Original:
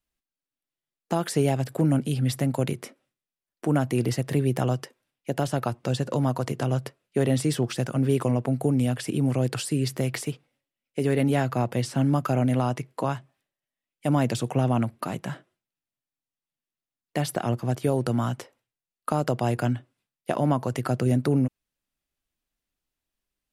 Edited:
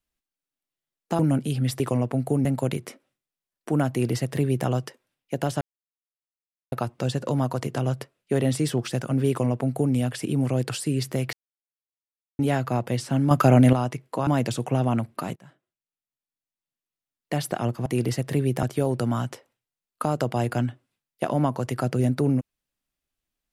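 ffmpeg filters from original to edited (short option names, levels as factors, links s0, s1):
-filter_complex "[0:a]asplit=13[s0][s1][s2][s3][s4][s5][s6][s7][s8][s9][s10][s11][s12];[s0]atrim=end=1.192[s13];[s1]atrim=start=1.798:end=2.412[s14];[s2]atrim=start=8.138:end=8.792[s15];[s3]atrim=start=2.408:end=5.57,asetpts=PTS-STARTPTS,afade=t=out:st=3.158:d=0.004:c=hsin,apad=pad_dur=1.11[s16];[s4]atrim=start=5.57:end=10.18,asetpts=PTS-STARTPTS,afade=t=in:d=0.004:c=hsin,afade=t=out:st=4.606:d=0.004:c=hsin[s17];[s5]atrim=start=10.18:end=11.24,asetpts=PTS-STARTPTS,volume=0[s18];[s6]atrim=start=11.24:end=12.162,asetpts=PTS-STARTPTS,afade=t=in:d=0.004:c=hsin[s19];[s7]atrim=start=12.158:end=12.582,asetpts=PTS-STARTPTS,volume=2.37[s20];[s8]atrim=start=12.578:end=13.122[s21];[s9]atrim=start=14.108:end=15.2,asetpts=PTS-STARTPTS,afade=t=out:st=1.088:d=0.004:c=hsin:silence=0.0944061[s22];[s10]atrim=start=15.2:end=17.702,asetpts=PTS-STARTPTS,afade=t=in:d=1.99:silence=0.0944061[s23];[s11]atrim=start=3.858:end=4.632[s24];[s12]atrim=start=17.698[s25];[s13][s14]acrossfade=d=0.004:c1=hsin:c2=hsin[s26];[s26][s15]acrossfade=d=0.004:c1=hsin:c2=hsin[s27];[s16][s17][s18][s19]concat=n=4:v=0:a=1[s28];[s27][s28]acrossfade=d=0.004:c1=hsin:c2=hsin[s29];[s29][s20]acrossfade=d=0.004:c1=hsin:c2=hsin[s30];[s30][s21]acrossfade=d=0.004:c1=hsin:c2=hsin[s31];[s22][s23]concat=n=2:v=0:a=1[s32];[s31][s32]acrossfade=d=0.004:c1=hsin:c2=hsin[s33];[s33][s24]acrossfade=d=0.004:c1=hsin:c2=hsin[s34];[s34][s25]acrossfade=d=0.004:c1=hsin:c2=hsin"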